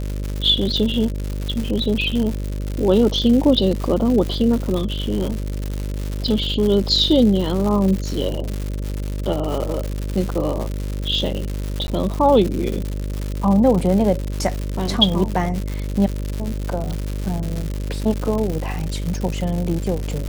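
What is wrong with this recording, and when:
buzz 50 Hz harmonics 12 -25 dBFS
crackle 200/s -23 dBFS
11.87–11.88 gap

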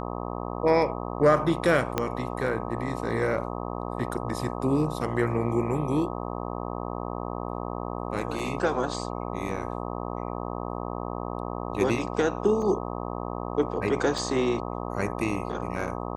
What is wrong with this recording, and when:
buzz 60 Hz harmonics 21 -33 dBFS
1.98 pop -10 dBFS
8.39 gap 2.5 ms
12.62 gap 3.5 ms
14.18 gap 2.8 ms

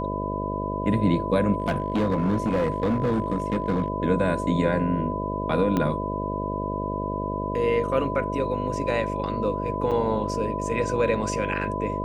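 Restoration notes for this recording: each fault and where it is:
buzz 50 Hz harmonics 13 -30 dBFS
tone 1000 Hz -30 dBFS
1.6–3.88 clipped -19 dBFS
5.77 pop -12 dBFS
9.91–9.92 gap 6.4 ms

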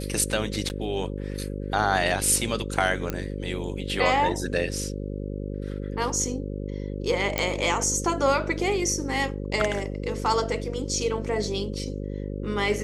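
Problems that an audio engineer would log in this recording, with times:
buzz 50 Hz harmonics 11 -32 dBFS
0.69–0.7 gap 9.5 ms
3.1 pop -13 dBFS
7.38 pop

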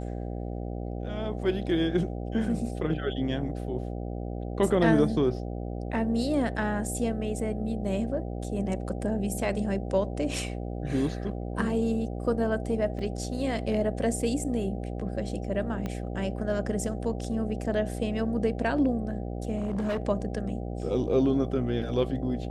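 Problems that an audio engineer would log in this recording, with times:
buzz 60 Hz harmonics 13 -34 dBFS
12.99 gap 2.7 ms
15.86 pop -20 dBFS
19.57–20.02 clipped -25.5 dBFS

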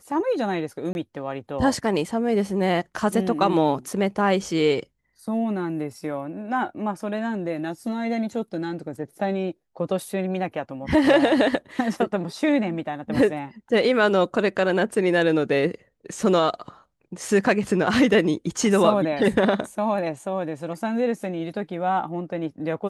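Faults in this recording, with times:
0.93–0.95 gap 21 ms

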